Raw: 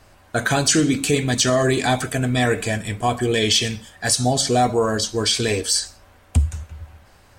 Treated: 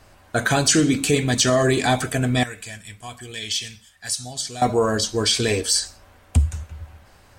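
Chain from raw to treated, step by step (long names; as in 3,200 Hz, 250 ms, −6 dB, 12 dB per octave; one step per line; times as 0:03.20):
0:02.43–0:04.62: guitar amp tone stack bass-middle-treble 5-5-5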